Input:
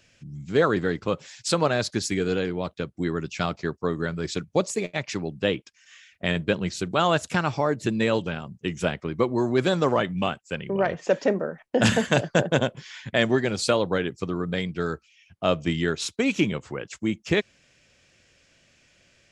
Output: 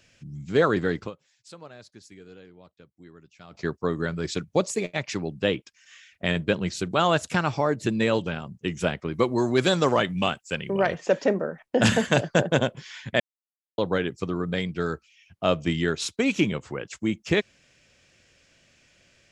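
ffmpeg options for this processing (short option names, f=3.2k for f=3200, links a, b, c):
-filter_complex "[0:a]asettb=1/sr,asplit=3[a][b][c];[a]atrim=end=9.134[d];[b]atrim=start=9.13:end=10.98,asetpts=PTS-STARTPTS,afade=t=in:d=0.004:c=qsin,afade=t=out:st=1.846:d=0.004:c=qsin,highshelf=f=2.7k:g=8[e];[c]atrim=start=10.976[f];[d][e]acrossfade=d=0.004:c1=hsin:c2=qsin[g];[g][f]acrossfade=d=0.004:c1=qsin:c2=hsin,asplit=5[h][i][j][k][l];[h]atrim=end=1.31,asetpts=PTS-STARTPTS,afade=t=out:st=1.06:d=0.25:c=exp:silence=0.0794328[m];[i]atrim=start=1.31:end=3.32,asetpts=PTS-STARTPTS,volume=-22dB[n];[j]atrim=start=3.32:end=13.2,asetpts=PTS-STARTPTS,afade=t=in:d=0.25:c=exp:silence=0.0794328,afade=t=out:st=9.876:d=0.004:c=hsin[o];[k]atrim=start=13.2:end=13.78,asetpts=PTS-STARTPTS,volume=0[p];[l]atrim=start=13.78,asetpts=PTS-STARTPTS,afade=t=in:d=0.004:c=hsin[q];[m][n][o][p][q]concat=n=5:v=0:a=1"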